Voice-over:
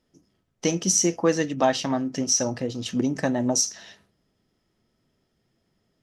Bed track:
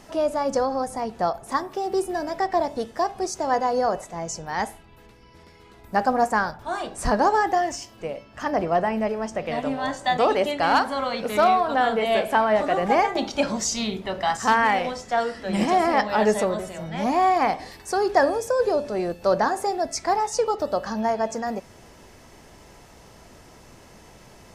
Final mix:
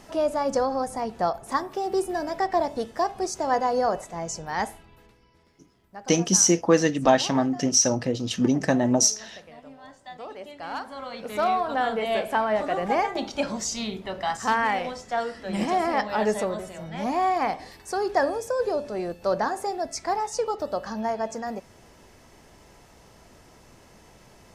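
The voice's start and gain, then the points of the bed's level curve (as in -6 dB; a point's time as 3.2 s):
5.45 s, +2.5 dB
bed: 4.85 s -1 dB
5.8 s -19.5 dB
10.26 s -19.5 dB
11.58 s -4 dB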